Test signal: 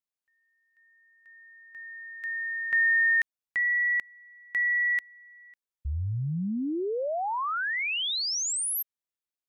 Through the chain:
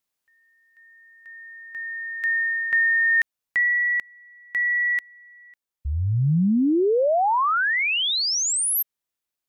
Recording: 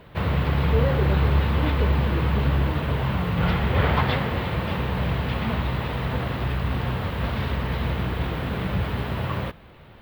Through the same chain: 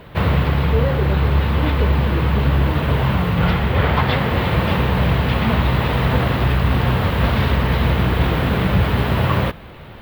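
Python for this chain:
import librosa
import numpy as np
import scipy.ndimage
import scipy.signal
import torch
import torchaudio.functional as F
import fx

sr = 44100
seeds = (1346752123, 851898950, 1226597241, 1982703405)

y = fx.peak_eq(x, sr, hz=14000.0, db=2.5, octaves=0.37)
y = fx.rider(y, sr, range_db=4, speed_s=0.5)
y = y * 10.0 ** (6.5 / 20.0)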